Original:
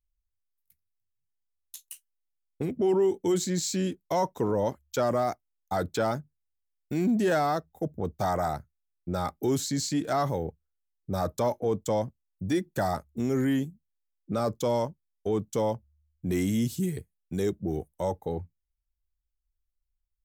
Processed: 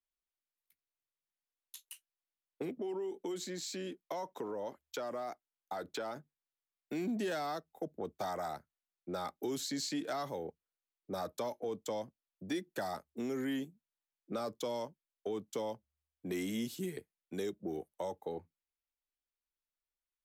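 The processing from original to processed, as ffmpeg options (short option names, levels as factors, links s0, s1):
-filter_complex "[0:a]asettb=1/sr,asplit=3[s0][s1][s2];[s0]atrim=end=2.784[s3];[s1]atrim=start=2.78:end=6.16,asetpts=PTS-STARTPTS,afade=t=in:d=0.004:c=qsin,afade=t=out:st=3.376:d=0.004:c=qsin,acompressor=threshold=0.02:ratio=2:attack=3.2:release=140:knee=1:detection=peak[s4];[s2]atrim=start=6.156[s5];[s3][s4]acrossfade=d=0.004:c1=hsin:c2=qsin[s6];[s6][s5]acrossfade=d=0.004:c1=qsin:c2=hsin,acrossover=split=250 4200:gain=0.0708 1 0.112[s7][s8][s9];[s7][s8][s9]amix=inputs=3:normalize=0,acrossover=split=200|3000[s10][s11][s12];[s11]acompressor=threshold=0.0158:ratio=4[s13];[s10][s13][s12]amix=inputs=3:normalize=0,equalizer=f=12000:t=o:w=1.3:g=13.5,volume=0.841"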